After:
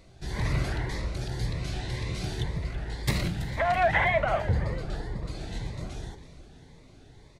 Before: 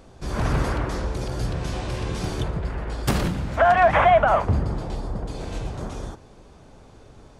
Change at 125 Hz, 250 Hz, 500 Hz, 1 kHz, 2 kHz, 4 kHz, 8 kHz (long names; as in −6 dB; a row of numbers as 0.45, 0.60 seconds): −3.5, −6.5, −8.5, −9.5, −3.0, −2.0, −4.5 decibels